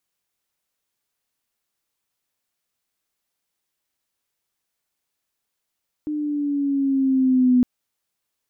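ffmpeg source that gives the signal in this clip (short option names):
-f lavfi -i "aevalsrc='pow(10,(-12+11*(t/1.56-1))/20)*sin(2*PI*303*1.56/(-3.5*log(2)/12)*(exp(-3.5*log(2)/12*t/1.56)-1))':d=1.56:s=44100"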